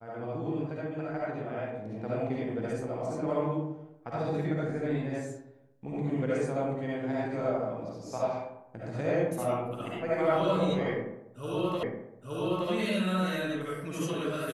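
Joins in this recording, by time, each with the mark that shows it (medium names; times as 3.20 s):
11.83 s: repeat of the last 0.87 s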